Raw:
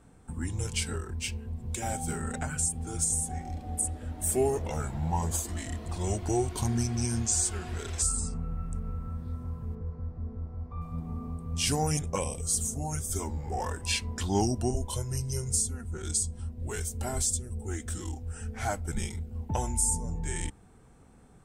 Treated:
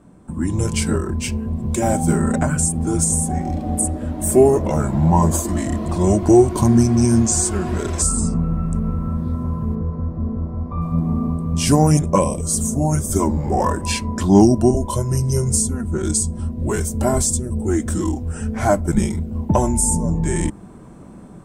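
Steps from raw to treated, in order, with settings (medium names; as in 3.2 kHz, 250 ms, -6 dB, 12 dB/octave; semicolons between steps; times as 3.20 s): small resonant body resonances 200/320/580/1000 Hz, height 12 dB, ringing for 30 ms; level rider gain up to 8 dB; dynamic bell 3.3 kHz, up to -5 dB, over -42 dBFS, Q 1.3; trim +1 dB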